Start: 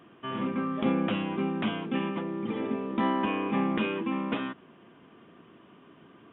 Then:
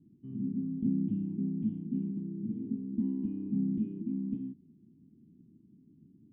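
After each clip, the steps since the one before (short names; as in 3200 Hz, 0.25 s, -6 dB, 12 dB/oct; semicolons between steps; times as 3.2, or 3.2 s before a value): inverse Chebyshev low-pass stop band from 520 Hz, stop band 40 dB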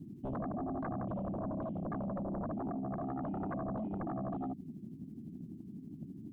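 compressor 6:1, threshold -40 dBFS, peak gain reduction 14 dB; tremolo triangle 12 Hz, depth 65%; sine folder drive 14 dB, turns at -33 dBFS; gain -1.5 dB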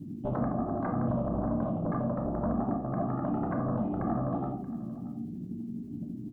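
echo 0.629 s -17.5 dB; on a send at -1.5 dB: reverb RT60 0.40 s, pre-delay 3 ms; on the sum: gain +4 dB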